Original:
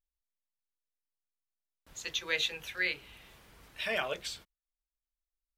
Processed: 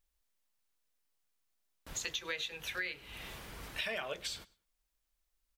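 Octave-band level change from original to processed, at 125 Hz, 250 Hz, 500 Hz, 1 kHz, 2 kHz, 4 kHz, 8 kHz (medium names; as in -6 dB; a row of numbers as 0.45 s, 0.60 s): +2.0 dB, -3.0 dB, -5.0 dB, -4.0 dB, -5.0 dB, -4.0 dB, +1.0 dB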